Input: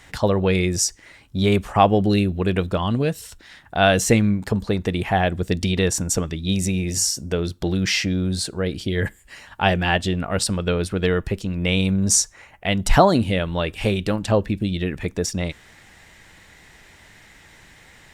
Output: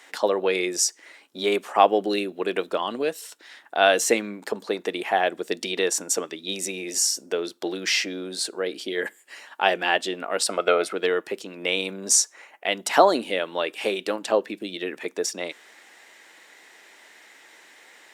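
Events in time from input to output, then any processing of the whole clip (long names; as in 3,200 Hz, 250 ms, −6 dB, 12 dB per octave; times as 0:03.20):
0:10.49–0:10.93: hollow resonant body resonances 680/1,300/2,100 Hz, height 14 dB, ringing for 20 ms
whole clip: high-pass filter 320 Hz 24 dB per octave; level −1 dB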